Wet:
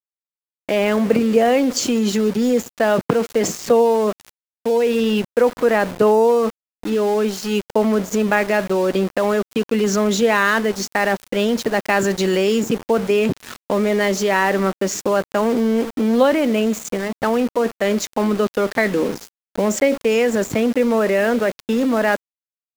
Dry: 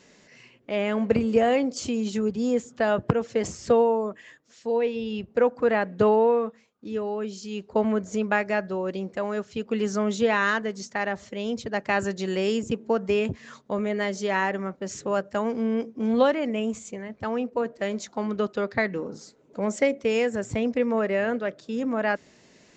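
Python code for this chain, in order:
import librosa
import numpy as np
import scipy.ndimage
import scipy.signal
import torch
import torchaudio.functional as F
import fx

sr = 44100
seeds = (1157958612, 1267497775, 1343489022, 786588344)

p1 = scipy.signal.sosfilt(scipy.signal.cheby1(2, 1.0, 230.0, 'highpass', fs=sr, output='sos'), x)
p2 = fx.over_compress(p1, sr, threshold_db=-31.0, ratio=-1.0)
p3 = p1 + F.gain(torch.from_numpy(p2), 0.0).numpy()
p4 = np.where(np.abs(p3) >= 10.0 ** (-32.0 / 20.0), p3, 0.0)
y = F.gain(torch.from_numpy(p4), 5.0).numpy()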